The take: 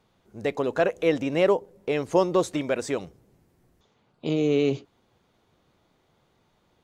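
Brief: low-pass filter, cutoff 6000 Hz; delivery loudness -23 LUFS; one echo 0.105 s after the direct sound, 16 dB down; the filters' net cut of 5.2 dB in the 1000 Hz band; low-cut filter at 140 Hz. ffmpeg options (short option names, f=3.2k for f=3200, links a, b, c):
-af "highpass=140,lowpass=6k,equalizer=f=1k:t=o:g=-7,aecho=1:1:105:0.158,volume=3.5dB"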